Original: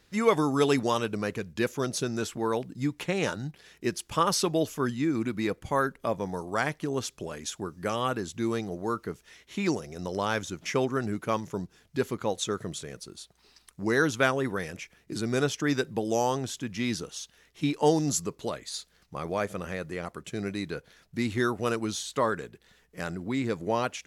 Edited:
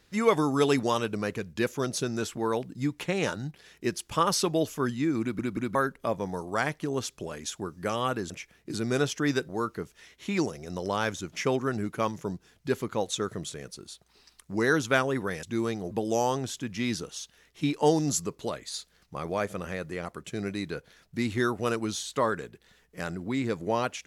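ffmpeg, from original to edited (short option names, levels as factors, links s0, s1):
-filter_complex "[0:a]asplit=8[s0][s1][s2][s3][s4][s5][s6][s7];[s0]atrim=end=5.392[s8];[s1]atrim=start=5.208:end=5.392[s9];[s2]atrim=start=5.208:end=5.392[s10];[s3]atrim=start=5.748:end=8.302[s11];[s4]atrim=start=14.718:end=15.912[s12];[s5]atrim=start=8.778:end=14.722[s13];[s6]atrim=start=8.298:end=8.782[s14];[s7]atrim=start=15.908[s15];[s8][s9]acrossfade=d=0.004:c1=hsin:c2=hsin[s16];[s16][s10]acrossfade=d=0.004:c1=hsin:c2=hsin[s17];[s17][s11]acrossfade=d=0.004:c1=hsin:c2=hsin[s18];[s18][s12]acrossfade=d=0.004:c1=hsin:c2=hsin[s19];[s19][s13]acrossfade=d=0.004:c1=hsin:c2=hsin[s20];[s20][s14]acrossfade=d=0.004:c1=hsin:c2=hsin[s21];[s21][s15]acrossfade=d=0.004:c1=hsin:c2=hsin"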